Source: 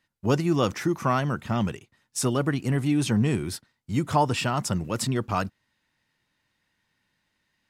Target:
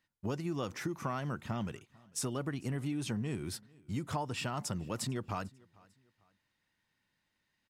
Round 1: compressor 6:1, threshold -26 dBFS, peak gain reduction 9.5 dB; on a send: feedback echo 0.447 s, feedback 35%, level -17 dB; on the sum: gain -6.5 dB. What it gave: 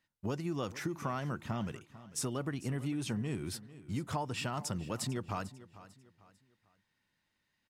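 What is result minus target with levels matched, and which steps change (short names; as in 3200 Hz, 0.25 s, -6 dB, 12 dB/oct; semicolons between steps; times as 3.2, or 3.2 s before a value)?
echo-to-direct +8.5 dB
change: feedback echo 0.447 s, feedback 35%, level -25.5 dB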